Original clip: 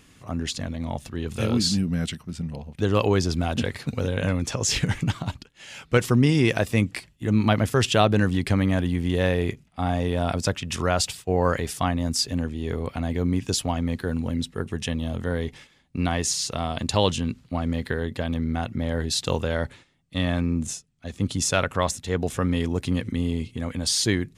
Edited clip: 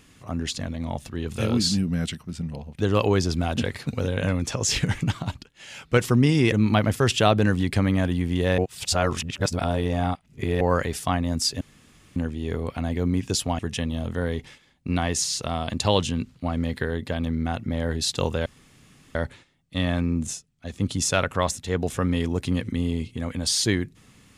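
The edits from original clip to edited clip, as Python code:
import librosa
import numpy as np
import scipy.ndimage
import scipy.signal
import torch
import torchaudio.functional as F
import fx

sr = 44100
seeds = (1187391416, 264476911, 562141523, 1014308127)

y = fx.edit(x, sr, fx.cut(start_s=6.52, length_s=0.74),
    fx.reverse_span(start_s=9.32, length_s=2.03),
    fx.insert_room_tone(at_s=12.35, length_s=0.55),
    fx.cut(start_s=13.78, length_s=0.9),
    fx.insert_room_tone(at_s=19.55, length_s=0.69), tone=tone)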